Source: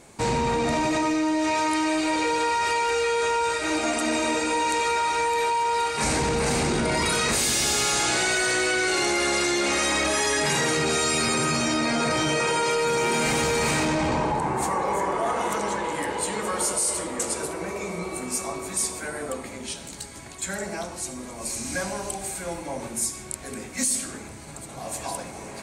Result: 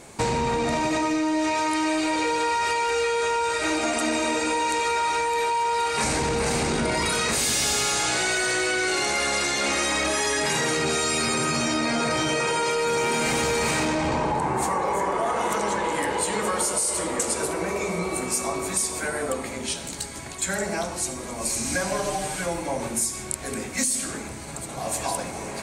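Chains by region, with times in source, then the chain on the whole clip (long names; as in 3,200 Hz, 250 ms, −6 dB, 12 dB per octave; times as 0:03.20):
0:21.91–0:22.46: linear delta modulator 64 kbit/s, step −43 dBFS + comb filter 6.7 ms, depth 81%
whole clip: mains-hum notches 50/100/150/200/250/300/350 Hz; downward compressor, threshold −26 dBFS; level +5 dB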